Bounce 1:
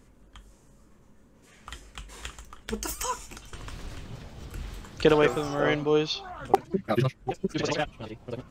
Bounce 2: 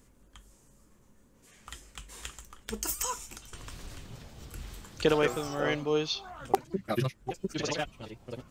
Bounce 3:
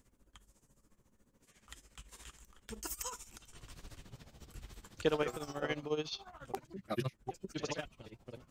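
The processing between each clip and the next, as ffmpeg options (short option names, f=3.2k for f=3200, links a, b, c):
-af "highshelf=f=5.5k:g=10,volume=-5dB"
-af "tremolo=f=14:d=0.79,volume=-4.5dB"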